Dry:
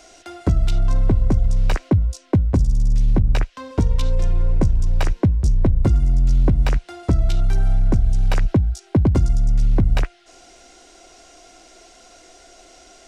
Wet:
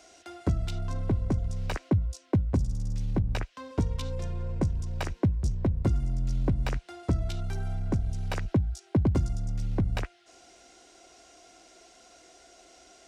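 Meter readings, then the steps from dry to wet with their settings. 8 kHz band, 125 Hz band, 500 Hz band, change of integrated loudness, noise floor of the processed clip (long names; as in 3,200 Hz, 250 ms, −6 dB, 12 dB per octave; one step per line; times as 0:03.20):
can't be measured, −9.0 dB, −7.5 dB, −10.0 dB, −58 dBFS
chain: high-pass filter 57 Hz 12 dB per octave
level −7.5 dB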